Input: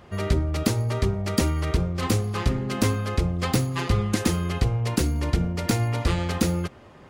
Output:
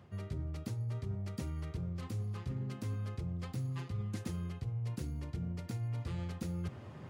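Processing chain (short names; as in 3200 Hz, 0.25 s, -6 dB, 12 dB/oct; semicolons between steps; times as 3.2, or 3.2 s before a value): HPF 66 Hz 24 dB/oct; bell 120 Hz +12 dB 1.5 oct; reverse; compressor 6:1, threshold -32 dBFS, peak gain reduction 21 dB; reverse; gain -5.5 dB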